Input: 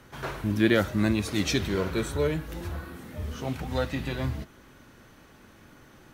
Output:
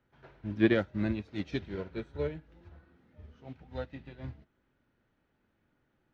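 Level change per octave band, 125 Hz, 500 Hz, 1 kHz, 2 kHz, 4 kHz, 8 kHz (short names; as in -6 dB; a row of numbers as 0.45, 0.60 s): -9.0 dB, -6.0 dB, -11.5 dB, -8.0 dB, -13.5 dB, under -30 dB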